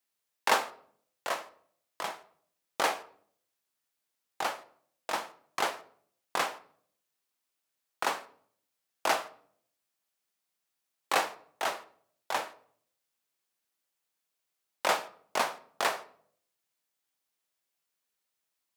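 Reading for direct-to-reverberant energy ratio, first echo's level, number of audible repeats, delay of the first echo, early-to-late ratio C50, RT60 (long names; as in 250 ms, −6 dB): 10.5 dB, no echo audible, no echo audible, no echo audible, 17.5 dB, 0.60 s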